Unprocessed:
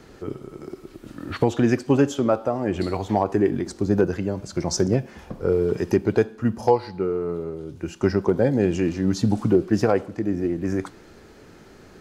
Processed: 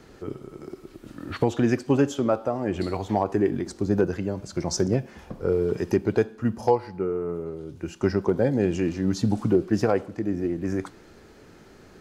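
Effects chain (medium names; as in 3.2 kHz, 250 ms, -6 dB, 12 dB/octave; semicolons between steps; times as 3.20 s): 6.75–7.46 s: peaking EQ 4 kHz -12 dB 0.55 oct; trim -2.5 dB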